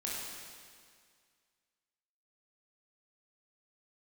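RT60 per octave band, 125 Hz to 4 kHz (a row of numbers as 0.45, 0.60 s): 2.0, 2.0, 2.0, 2.0, 2.0, 1.9 s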